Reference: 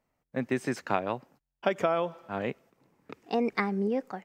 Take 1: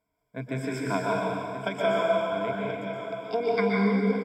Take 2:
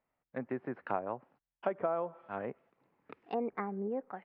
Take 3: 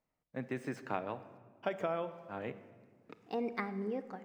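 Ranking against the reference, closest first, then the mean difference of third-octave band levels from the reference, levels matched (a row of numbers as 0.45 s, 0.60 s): 3, 2, 1; 3.0 dB, 5.0 dB, 8.5 dB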